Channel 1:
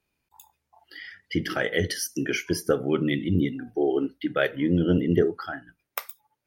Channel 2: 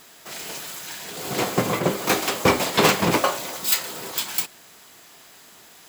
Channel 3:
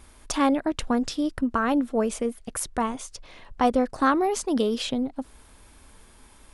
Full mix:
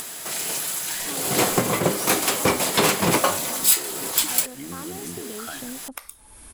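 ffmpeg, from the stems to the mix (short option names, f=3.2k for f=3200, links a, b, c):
-filter_complex "[0:a]acompressor=threshold=-29dB:ratio=6,lowpass=11k,volume=-2dB[a];[1:a]alimiter=limit=-10.5dB:level=0:latency=1:release=442,volume=3dB[b];[2:a]adelay=700,volume=-13.5dB[c];[a][c]amix=inputs=2:normalize=0,acompressor=threshold=-35dB:ratio=6,volume=0dB[d];[b][d]amix=inputs=2:normalize=0,equalizer=f=10k:t=o:w=0.71:g=11.5,acompressor=mode=upward:threshold=-27dB:ratio=2.5"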